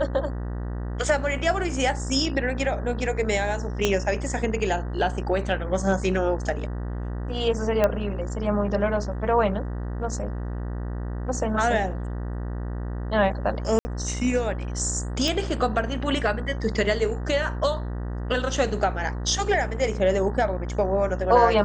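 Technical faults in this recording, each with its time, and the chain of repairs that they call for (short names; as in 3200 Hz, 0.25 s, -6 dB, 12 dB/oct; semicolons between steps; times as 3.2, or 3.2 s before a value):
buzz 60 Hz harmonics 32 -30 dBFS
3.85 pop -7 dBFS
7.84 pop -9 dBFS
13.79–13.85 gap 60 ms
15.28 pop -12 dBFS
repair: de-click; de-hum 60 Hz, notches 32; interpolate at 13.79, 60 ms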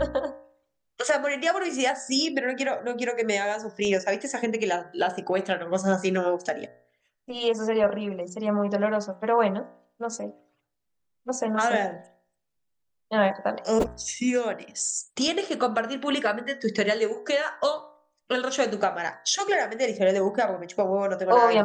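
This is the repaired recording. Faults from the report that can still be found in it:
3.85 pop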